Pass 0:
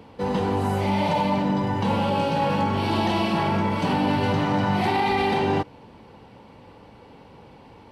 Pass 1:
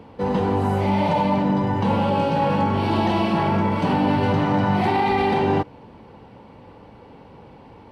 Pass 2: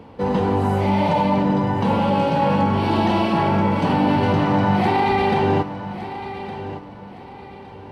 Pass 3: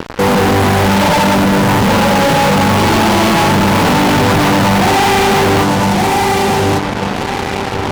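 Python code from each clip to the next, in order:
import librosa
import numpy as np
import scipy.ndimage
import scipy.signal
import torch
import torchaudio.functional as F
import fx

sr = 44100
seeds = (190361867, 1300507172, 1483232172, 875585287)

y1 = fx.high_shelf(x, sr, hz=2800.0, db=-8.5)
y1 = F.gain(torch.from_numpy(y1), 3.0).numpy()
y2 = fx.echo_feedback(y1, sr, ms=1163, feedback_pct=32, wet_db=-12.5)
y2 = F.gain(torch.from_numpy(y2), 1.5).numpy()
y3 = fx.fuzz(y2, sr, gain_db=42.0, gate_db=-38.0)
y3 = F.gain(torch.from_numpy(y3), 3.5).numpy()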